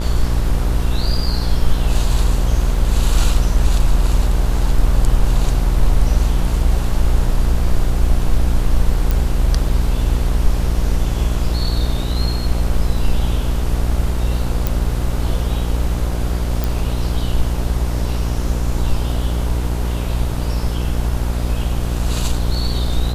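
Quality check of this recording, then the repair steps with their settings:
buzz 60 Hz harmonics 27 -20 dBFS
9.11 pop
14.67 pop
16.64 pop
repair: de-click; de-hum 60 Hz, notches 27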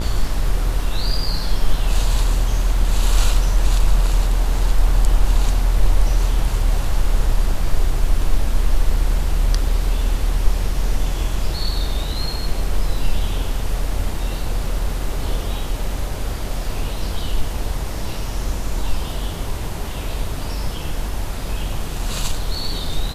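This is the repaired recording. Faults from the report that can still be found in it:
none

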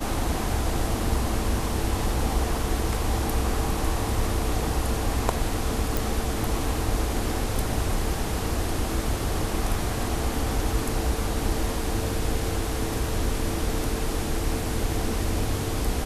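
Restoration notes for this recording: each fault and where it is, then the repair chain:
5.97 pop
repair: de-click

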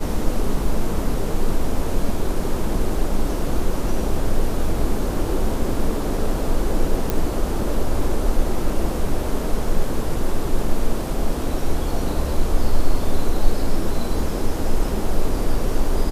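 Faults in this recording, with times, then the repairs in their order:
7.1 pop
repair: de-click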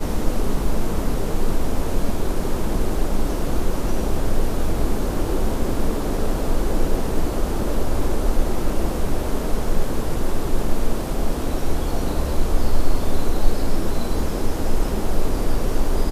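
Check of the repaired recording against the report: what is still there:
none

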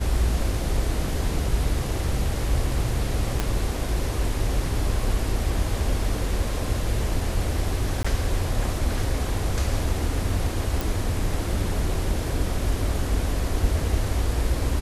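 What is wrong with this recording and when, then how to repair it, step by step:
3.4 pop -9 dBFS
8.03–8.04 gap 15 ms
10.81 pop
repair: de-click; interpolate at 8.03, 15 ms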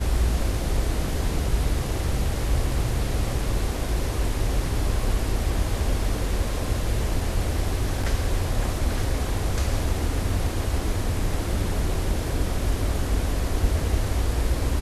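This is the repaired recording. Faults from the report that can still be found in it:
3.4 pop

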